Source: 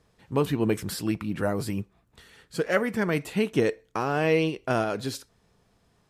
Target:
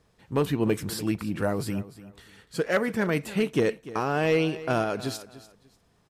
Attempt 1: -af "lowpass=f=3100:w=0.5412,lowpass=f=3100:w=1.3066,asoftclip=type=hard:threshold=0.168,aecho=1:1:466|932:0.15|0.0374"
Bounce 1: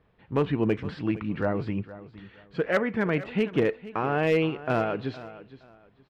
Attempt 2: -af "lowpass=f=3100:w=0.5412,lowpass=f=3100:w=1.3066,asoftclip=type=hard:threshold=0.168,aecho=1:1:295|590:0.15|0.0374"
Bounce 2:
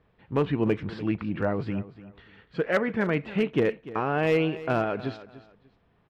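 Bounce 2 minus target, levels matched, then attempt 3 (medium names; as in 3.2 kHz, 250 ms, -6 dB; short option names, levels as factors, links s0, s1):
4 kHz band -4.5 dB
-af "asoftclip=type=hard:threshold=0.168,aecho=1:1:295|590:0.15|0.0374"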